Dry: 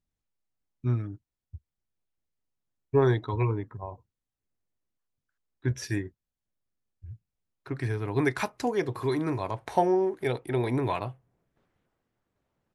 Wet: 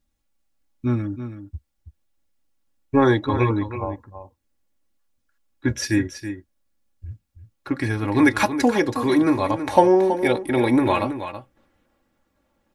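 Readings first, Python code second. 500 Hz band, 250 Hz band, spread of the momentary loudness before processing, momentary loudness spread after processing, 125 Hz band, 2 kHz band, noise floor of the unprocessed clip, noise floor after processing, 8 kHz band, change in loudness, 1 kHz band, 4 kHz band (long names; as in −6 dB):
+7.0 dB, +11.5 dB, 16 LU, 18 LU, +3.0 dB, +10.5 dB, below −85 dBFS, −72 dBFS, +10.5 dB, +8.0 dB, +9.0 dB, +10.5 dB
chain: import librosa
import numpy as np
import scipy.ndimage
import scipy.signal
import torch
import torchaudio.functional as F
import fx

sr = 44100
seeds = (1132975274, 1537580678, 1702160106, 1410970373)

y = x + 0.7 * np.pad(x, (int(3.6 * sr / 1000.0), 0))[:len(x)]
y = y + 10.0 ** (-10.5 / 20.0) * np.pad(y, (int(326 * sr / 1000.0), 0))[:len(y)]
y = y * 10.0 ** (8.5 / 20.0)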